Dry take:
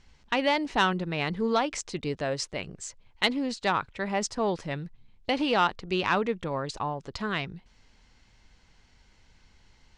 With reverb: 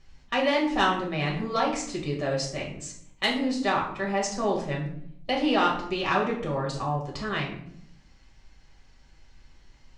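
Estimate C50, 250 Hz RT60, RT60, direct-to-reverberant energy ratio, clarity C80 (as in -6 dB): 6.5 dB, 1.0 s, 0.65 s, -3.0 dB, 10.5 dB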